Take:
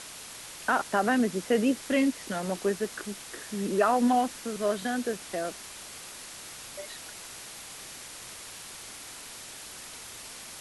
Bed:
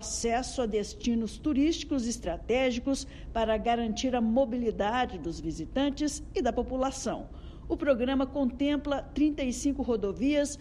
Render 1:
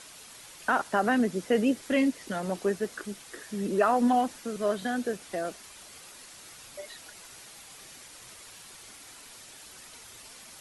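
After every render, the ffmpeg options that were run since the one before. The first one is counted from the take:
-af "afftdn=nr=7:nf=-44"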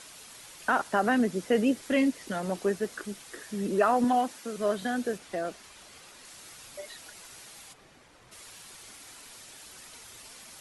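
-filter_complex "[0:a]asettb=1/sr,asplit=3[a][b][c];[a]atrim=end=4.044[d];[b]atrim=start=4.04:end=4.58,asetpts=PTS-STARTPTS,afade=t=in:d=0.004:c=qsin,afade=t=out:st=0.536:d=0.004:c=qsin,highpass=f=230:p=1[e];[c]atrim=start=4.576[f];[d][e]acrossfade=d=0.004:c1=hsin:c2=qsin[g];[g][f]acrossfade=d=0.004:c1=qsin:c2=hsin,asettb=1/sr,asplit=3[h][i][j];[h]atrim=end=5.184[k];[i]atrim=start=5.18:end=6.25,asetpts=PTS-STARTPTS,afade=t=in:d=0.004:c=qsin,afade=t=out:st=1.066:d=0.004:c=qsin,highshelf=f=7.7k:g=-8.5[l];[j]atrim=start=6.246[m];[k][l]acrossfade=d=0.004:c1=hsin:c2=qsin[n];[n][m]acrossfade=d=0.004:c1=qsin:c2=hsin,asplit=3[o][p][q];[o]afade=t=out:st=7.72:d=0.02[r];[p]lowpass=f=1.1k:p=1,afade=t=in:st=7.72:d=0.02,afade=t=out:st=8.31:d=0.02[s];[q]afade=t=in:st=8.31:d=0.02[t];[r][s][t]amix=inputs=3:normalize=0"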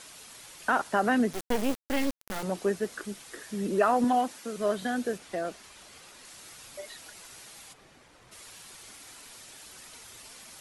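-filter_complex "[0:a]asettb=1/sr,asplit=3[a][b][c];[a]atrim=end=1.334[d];[b]atrim=start=1.33:end=2.43,asetpts=PTS-STARTPTS,afade=t=in:d=0.004:c=qsin,afade=t=out:st=1.096:d=0.004:c=qsin,acrusher=bits=3:dc=4:mix=0:aa=0.000001[e];[c]atrim=start=2.426[f];[d][e]acrossfade=d=0.004:c1=hsin:c2=qsin[g];[g][f]acrossfade=d=0.004:c1=qsin:c2=hsin"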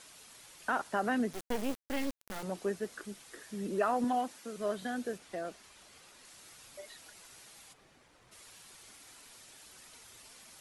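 -af "volume=-6.5dB"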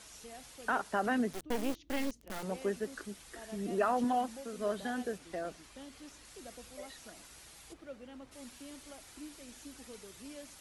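-filter_complex "[1:a]volume=-22.5dB[a];[0:a][a]amix=inputs=2:normalize=0"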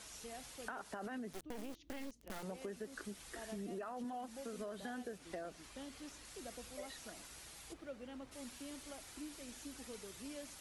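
-af "alimiter=level_in=3.5dB:limit=-24dB:level=0:latency=1:release=26,volume=-3.5dB,acompressor=threshold=-42dB:ratio=6"

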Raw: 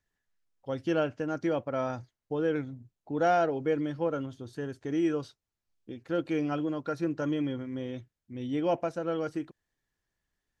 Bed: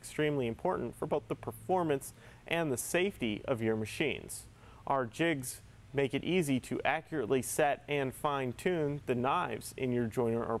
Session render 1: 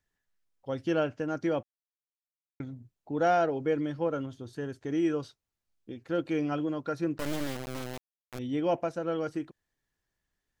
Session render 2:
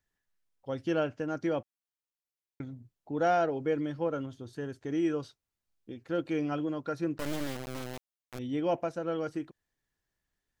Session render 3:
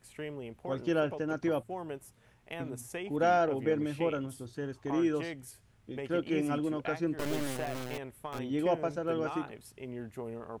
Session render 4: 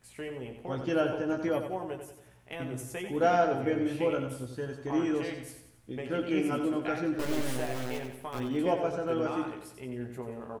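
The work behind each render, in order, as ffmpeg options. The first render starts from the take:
-filter_complex "[0:a]asettb=1/sr,asplit=3[a][b][c];[a]atrim=end=7.184[d];[b]atrim=start=7.18:end=8.39,asetpts=PTS-STARTPTS,afade=t=in:d=0.004:c=qsin,afade=t=out:st=1.206:d=0.004:c=qsin,acrusher=bits=3:dc=4:mix=0:aa=0.000001[e];[c]atrim=start=8.386[f];[d][e]acrossfade=d=0.004:c1=hsin:c2=qsin[g];[g][f]acrossfade=d=0.004:c1=qsin:c2=hsin,asplit=3[h][i][j];[h]atrim=end=1.63,asetpts=PTS-STARTPTS,afade=t=out:st=1.626:d=0.004:c=hsin[k];[i]atrim=start=1.63:end=2.6,asetpts=PTS-STARTPTS,volume=0[l];[j]atrim=start=2.6,asetpts=PTS-STARTPTS,afade=t=in:d=0.004:c=hsin[m];[k][l][m]concat=n=3:v=0:a=1"
-af "volume=-1.5dB"
-filter_complex "[1:a]volume=-9dB[a];[0:a][a]amix=inputs=2:normalize=0"
-filter_complex "[0:a]asplit=2[a][b];[b]adelay=16,volume=-5dB[c];[a][c]amix=inputs=2:normalize=0,aecho=1:1:91|182|273|364|455|546:0.398|0.191|0.0917|0.044|0.0211|0.0101"

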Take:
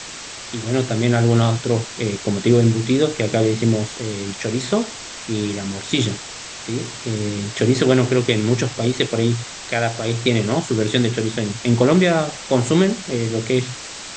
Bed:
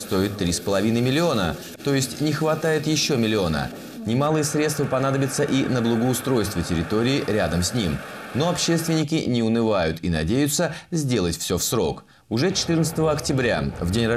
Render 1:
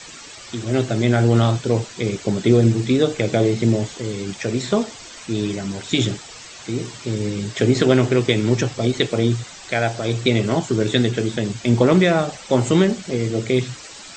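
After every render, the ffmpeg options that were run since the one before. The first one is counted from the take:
-af "afftdn=nr=10:nf=-34"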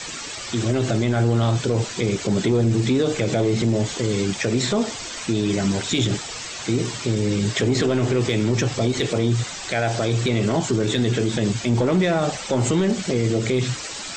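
-af "acontrast=60,alimiter=limit=-12.5dB:level=0:latency=1:release=68"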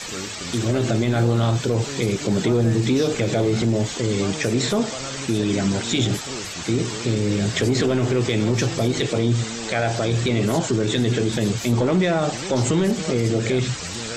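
-filter_complex "[1:a]volume=-12.5dB[a];[0:a][a]amix=inputs=2:normalize=0"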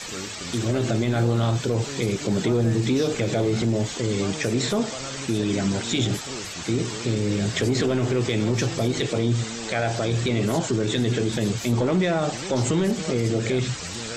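-af "volume=-2.5dB"

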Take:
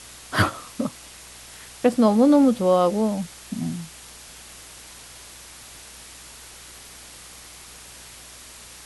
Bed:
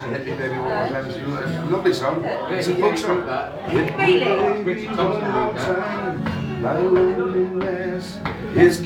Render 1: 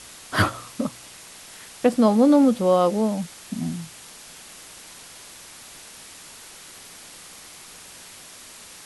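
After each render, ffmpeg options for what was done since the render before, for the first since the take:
-af "bandreject=f=60:t=h:w=4,bandreject=f=120:t=h:w=4"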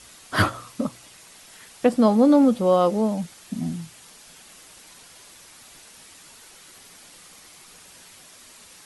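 -af "afftdn=nr=6:nf=-44"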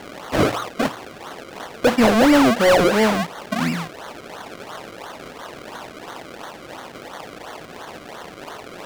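-filter_complex "[0:a]acrusher=samples=34:mix=1:aa=0.000001:lfo=1:lforange=34:lforate=2.9,asplit=2[a][b];[b]highpass=f=720:p=1,volume=23dB,asoftclip=type=tanh:threshold=-6.5dB[c];[a][c]amix=inputs=2:normalize=0,lowpass=f=4.1k:p=1,volume=-6dB"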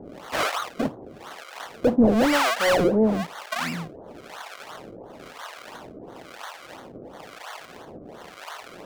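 -filter_complex "[0:a]acrossover=split=640[a][b];[a]aeval=exprs='val(0)*(1-1/2+1/2*cos(2*PI*1*n/s))':c=same[c];[b]aeval=exprs='val(0)*(1-1/2-1/2*cos(2*PI*1*n/s))':c=same[d];[c][d]amix=inputs=2:normalize=0"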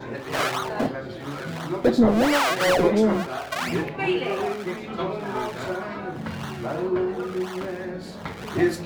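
-filter_complex "[1:a]volume=-8dB[a];[0:a][a]amix=inputs=2:normalize=0"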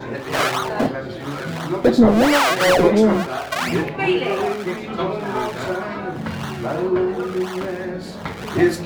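-af "volume=5dB,alimiter=limit=-3dB:level=0:latency=1"

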